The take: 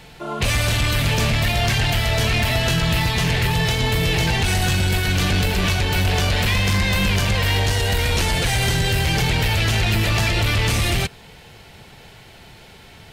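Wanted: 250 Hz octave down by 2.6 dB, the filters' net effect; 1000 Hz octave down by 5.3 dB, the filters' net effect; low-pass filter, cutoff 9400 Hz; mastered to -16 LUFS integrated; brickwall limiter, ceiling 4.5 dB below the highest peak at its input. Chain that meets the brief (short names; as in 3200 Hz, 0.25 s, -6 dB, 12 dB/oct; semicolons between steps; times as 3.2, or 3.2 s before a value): LPF 9400 Hz; bell 250 Hz -4 dB; bell 1000 Hz -7 dB; gain +7 dB; limiter -9.5 dBFS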